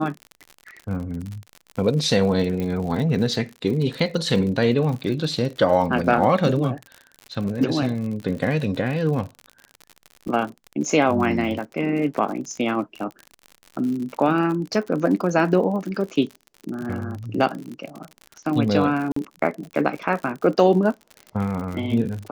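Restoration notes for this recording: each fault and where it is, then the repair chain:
crackle 58 per s -29 dBFS
2.60 s: pop -16 dBFS
19.12–19.16 s: dropout 44 ms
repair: de-click; interpolate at 19.12 s, 44 ms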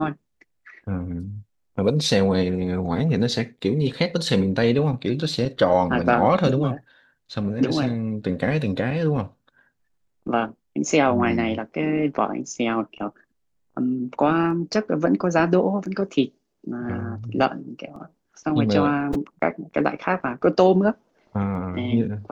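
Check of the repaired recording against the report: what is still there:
nothing left

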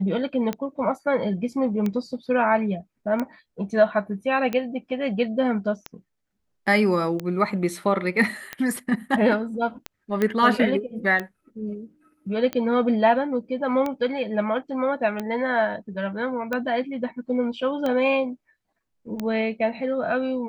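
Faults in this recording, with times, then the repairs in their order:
tick 45 rpm -14 dBFS
10.22 s: pop -11 dBFS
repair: de-click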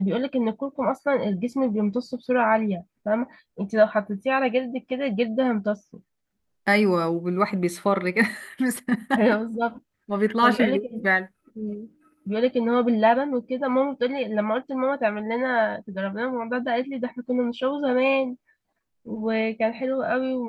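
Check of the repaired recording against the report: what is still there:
nothing left

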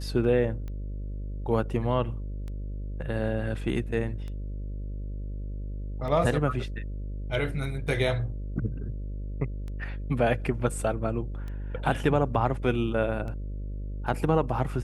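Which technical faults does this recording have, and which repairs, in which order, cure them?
buzz 50 Hz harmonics 12 -34 dBFS
tick 33 1/3 rpm -27 dBFS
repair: de-click; de-hum 50 Hz, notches 12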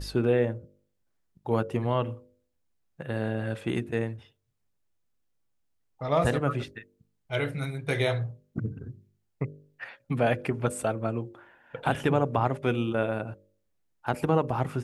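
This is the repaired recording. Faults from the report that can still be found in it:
nothing left

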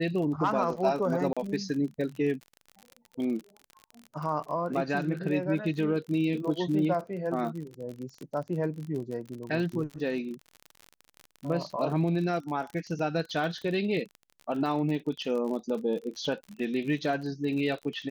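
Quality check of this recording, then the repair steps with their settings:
crackle 39 per s -35 dBFS
1.33–1.37 s: dropout 36 ms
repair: de-click; interpolate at 1.33 s, 36 ms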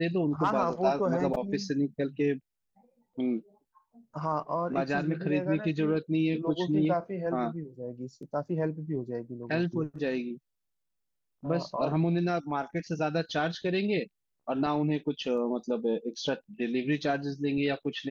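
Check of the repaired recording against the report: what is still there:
nothing left

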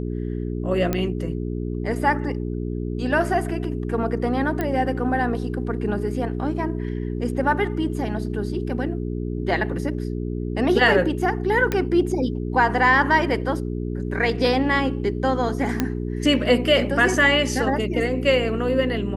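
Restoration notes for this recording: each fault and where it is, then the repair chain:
hum 60 Hz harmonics 7 -27 dBFS
0.93 s: pop -9 dBFS
4.61 s: pop -12 dBFS
11.72 s: pop -9 dBFS
15.80 s: pop -7 dBFS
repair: de-click; de-hum 60 Hz, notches 7

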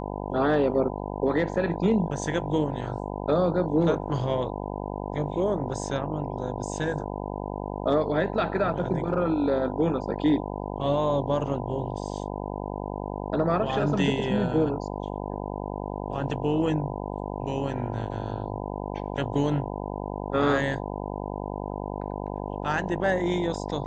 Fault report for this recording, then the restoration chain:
buzz 50 Hz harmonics 20 -33 dBFS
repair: de-hum 50 Hz, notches 20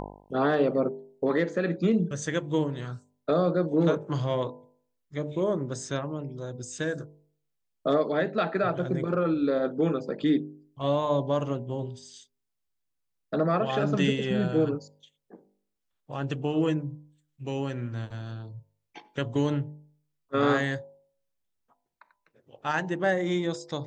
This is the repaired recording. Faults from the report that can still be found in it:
nothing left

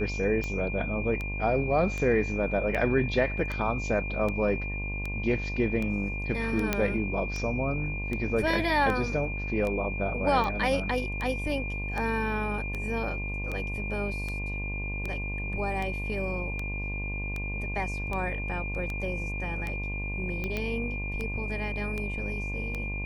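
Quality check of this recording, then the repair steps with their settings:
buzz 50 Hz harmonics 22 -34 dBFS
tick 78 rpm -20 dBFS
whine 2.4 kHz -35 dBFS
6.73 s: pop -10 dBFS
20.57 s: pop -18 dBFS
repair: de-click; band-stop 2.4 kHz, Q 30; de-hum 50 Hz, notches 22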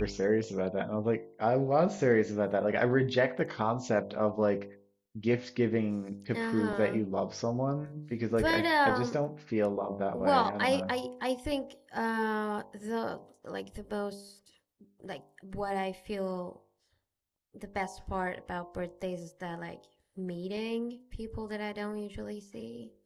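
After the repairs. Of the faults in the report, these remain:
nothing left

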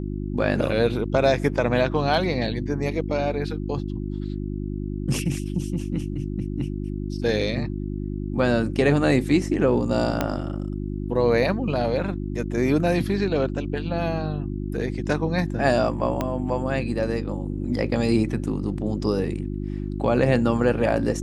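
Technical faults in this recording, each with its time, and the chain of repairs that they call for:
hum 50 Hz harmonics 7 -29 dBFS
10.21 s: pop -8 dBFS
16.21 s: pop -11 dBFS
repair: de-click; de-hum 50 Hz, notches 7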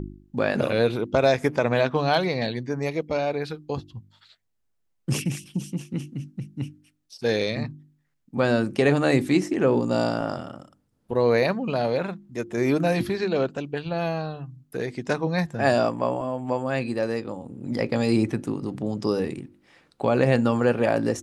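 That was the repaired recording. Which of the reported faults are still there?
10.21 s: pop
16.21 s: pop

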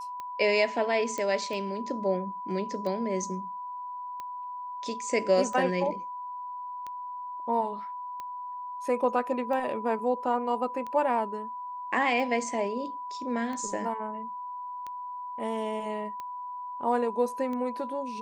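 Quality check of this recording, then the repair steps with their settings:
tick 45 rpm -25 dBFS
whine 990 Hz -35 dBFS
1.18 s: pop -19 dBFS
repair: de-click; band-stop 990 Hz, Q 30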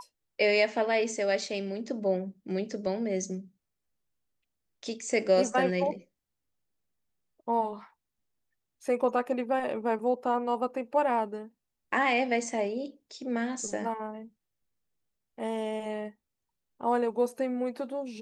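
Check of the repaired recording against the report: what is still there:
nothing left

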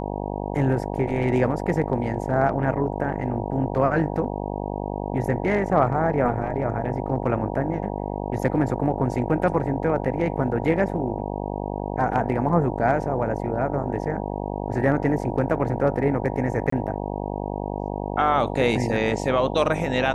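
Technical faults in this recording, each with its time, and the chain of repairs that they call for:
buzz 50 Hz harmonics 19 -29 dBFS
16.70–16.72 s: dropout 24 ms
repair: de-hum 50 Hz, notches 19; interpolate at 16.70 s, 24 ms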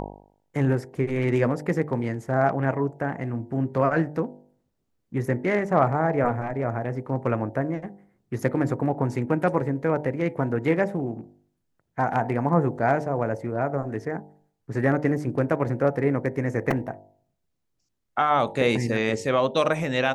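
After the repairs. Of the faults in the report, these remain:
nothing left

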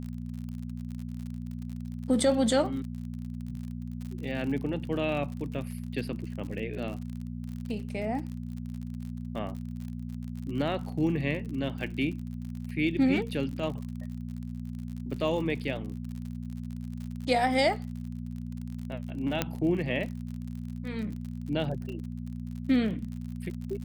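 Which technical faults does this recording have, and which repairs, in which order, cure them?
crackle 51 per s -37 dBFS
hum 60 Hz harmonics 4 -37 dBFS
19.42 s: pop -11 dBFS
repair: de-click; de-hum 60 Hz, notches 4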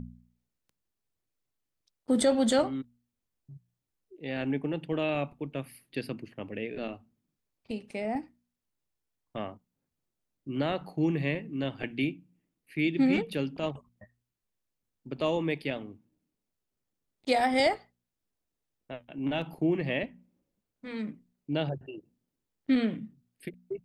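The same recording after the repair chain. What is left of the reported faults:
19.42 s: pop

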